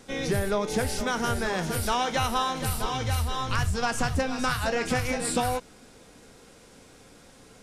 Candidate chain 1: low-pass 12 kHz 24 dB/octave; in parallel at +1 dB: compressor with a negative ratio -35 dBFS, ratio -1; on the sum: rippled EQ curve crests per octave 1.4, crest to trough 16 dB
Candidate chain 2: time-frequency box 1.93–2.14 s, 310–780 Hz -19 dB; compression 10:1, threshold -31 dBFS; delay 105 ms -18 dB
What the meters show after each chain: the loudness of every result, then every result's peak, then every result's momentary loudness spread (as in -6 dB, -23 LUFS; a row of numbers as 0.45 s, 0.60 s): -21.5 LUFS, -35.5 LUFS; -8.0 dBFS, -21.5 dBFS; 18 LU, 17 LU